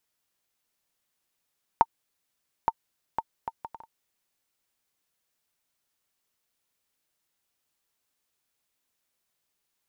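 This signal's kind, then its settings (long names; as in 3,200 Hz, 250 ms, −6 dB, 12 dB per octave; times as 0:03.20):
bouncing ball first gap 0.87 s, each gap 0.58, 909 Hz, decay 44 ms −6 dBFS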